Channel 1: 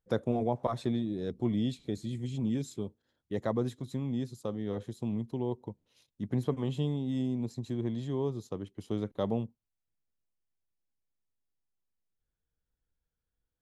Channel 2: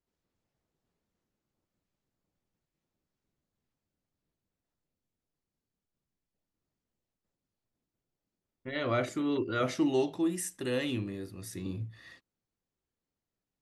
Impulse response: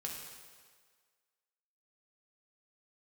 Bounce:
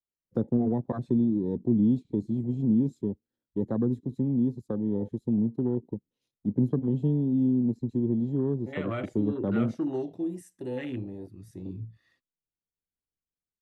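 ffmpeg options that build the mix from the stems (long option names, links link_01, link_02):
-filter_complex "[0:a]equalizer=frequency=250:width=0.6:gain=11,bandreject=frequency=630:width=12,adelay=250,volume=-1.5dB[link_01];[1:a]volume=-0.5dB[link_02];[link_01][link_02]amix=inputs=2:normalize=0,afwtdn=0.0141,acrossover=split=300|3000[link_03][link_04][link_05];[link_04]acompressor=threshold=-32dB:ratio=6[link_06];[link_03][link_06][link_05]amix=inputs=3:normalize=0"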